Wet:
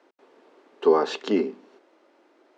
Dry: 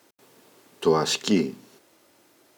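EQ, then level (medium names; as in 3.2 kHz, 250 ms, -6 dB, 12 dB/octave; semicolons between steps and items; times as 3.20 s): high-pass 290 Hz 24 dB/octave; low-pass 1.3 kHz 6 dB/octave; distance through air 85 m; +3.5 dB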